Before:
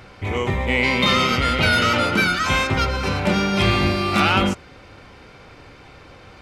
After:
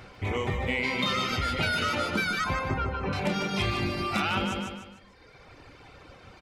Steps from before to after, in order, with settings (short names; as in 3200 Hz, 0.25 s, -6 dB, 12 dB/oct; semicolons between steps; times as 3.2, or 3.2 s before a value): 2.44–3.13 LPF 1700 Hz 12 dB/oct; reverb removal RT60 1.6 s; feedback echo 0.15 s, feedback 38%, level -7 dB; compressor 3:1, threshold -22 dBFS, peak gain reduction 6.5 dB; gain -3.5 dB